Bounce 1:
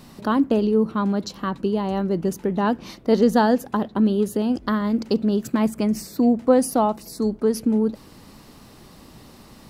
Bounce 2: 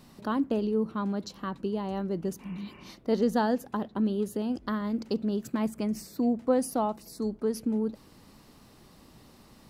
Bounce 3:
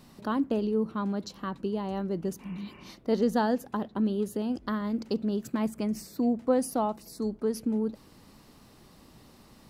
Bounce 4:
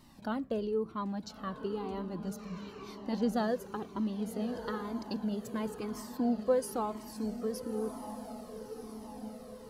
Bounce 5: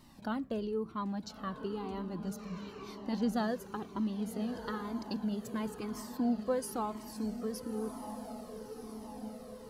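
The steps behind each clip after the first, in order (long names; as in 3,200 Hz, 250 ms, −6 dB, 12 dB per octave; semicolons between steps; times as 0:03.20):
healed spectral selection 0:02.43–0:02.82, 210–3,000 Hz after; level −8.5 dB
no processing that can be heard
feedback delay with all-pass diffusion 1,304 ms, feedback 50%, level −9.5 dB; flanger whose copies keep moving one way falling 1 Hz
dynamic equaliser 520 Hz, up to −5 dB, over −45 dBFS, Q 1.8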